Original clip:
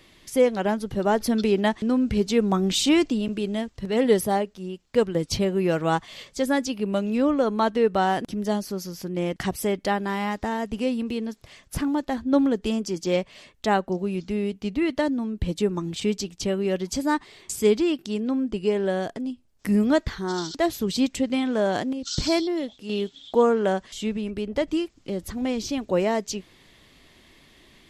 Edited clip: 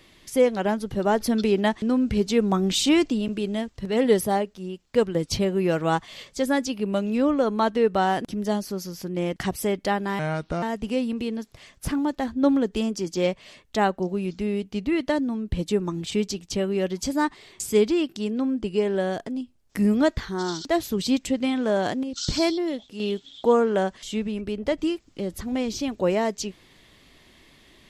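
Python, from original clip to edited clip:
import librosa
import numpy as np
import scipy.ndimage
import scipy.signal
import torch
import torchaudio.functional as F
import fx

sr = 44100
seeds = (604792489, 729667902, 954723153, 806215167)

y = fx.edit(x, sr, fx.speed_span(start_s=10.19, length_s=0.33, speed=0.76), tone=tone)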